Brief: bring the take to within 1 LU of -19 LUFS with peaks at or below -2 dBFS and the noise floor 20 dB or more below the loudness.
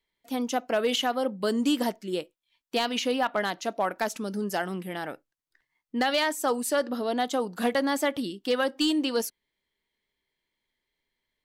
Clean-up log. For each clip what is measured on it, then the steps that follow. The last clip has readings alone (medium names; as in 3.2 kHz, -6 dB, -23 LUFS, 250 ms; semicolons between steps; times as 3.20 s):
clipped samples 0.2%; clipping level -17.5 dBFS; loudness -28.0 LUFS; peak level -17.5 dBFS; loudness target -19.0 LUFS
-> clip repair -17.5 dBFS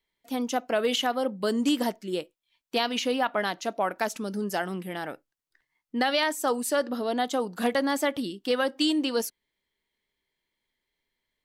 clipped samples 0.0%; loudness -28.0 LUFS; peak level -12.5 dBFS; loudness target -19.0 LUFS
-> trim +9 dB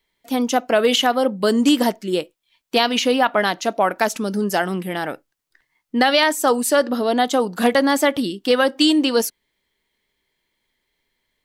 loudness -19.0 LUFS; peak level -3.5 dBFS; noise floor -75 dBFS